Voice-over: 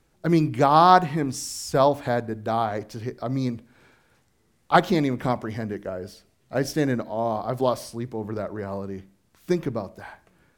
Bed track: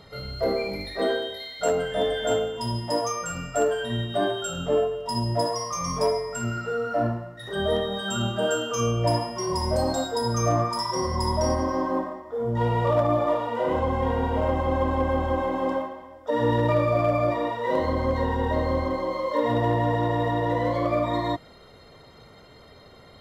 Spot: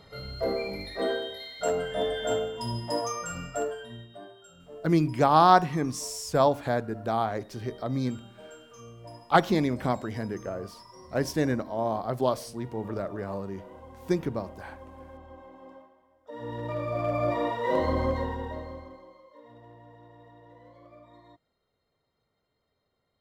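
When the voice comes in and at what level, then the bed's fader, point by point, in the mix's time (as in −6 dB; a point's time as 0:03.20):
4.60 s, −3.0 dB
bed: 0:03.46 −4 dB
0:04.28 −23 dB
0:15.92 −23 dB
0:17.40 −1.5 dB
0:18.03 −1.5 dB
0:19.31 −28.5 dB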